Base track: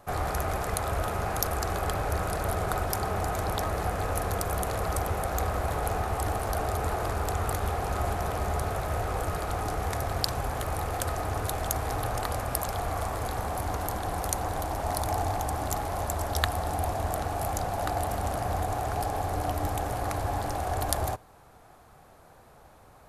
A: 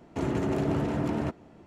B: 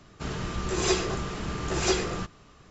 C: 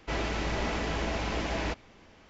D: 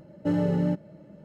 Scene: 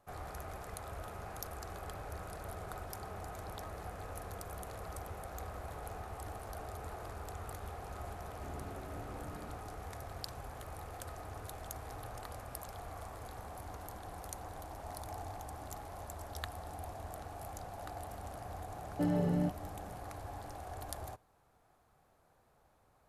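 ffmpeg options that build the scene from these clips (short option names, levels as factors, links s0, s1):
-filter_complex "[0:a]volume=0.168[s0];[1:a]acompressor=threshold=0.02:ratio=6:attack=3.2:release=140:knee=1:detection=peak,atrim=end=1.66,asetpts=PTS-STARTPTS,volume=0.224,afade=t=in:d=0.004:c=hsin,afade=t=out:st=1.656:d=0.004:c=hsin,adelay=8270[s1];[4:a]atrim=end=1.24,asetpts=PTS-STARTPTS,volume=0.447,afade=t=in:d=0.004:c=hsin,afade=t=out:st=1.236:d=0.004:c=hsin,adelay=18740[s2];[s0][s1][s2]amix=inputs=3:normalize=0"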